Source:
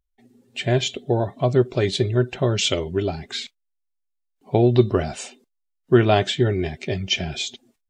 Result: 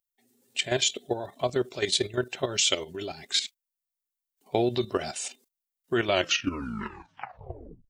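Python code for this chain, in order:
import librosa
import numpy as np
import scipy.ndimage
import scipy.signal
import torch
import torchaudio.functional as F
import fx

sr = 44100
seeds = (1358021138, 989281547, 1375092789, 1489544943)

y = fx.tape_stop_end(x, sr, length_s=1.89)
y = fx.riaa(y, sr, side='recording')
y = fx.level_steps(y, sr, step_db=11)
y = y * librosa.db_to_amplitude(-1.0)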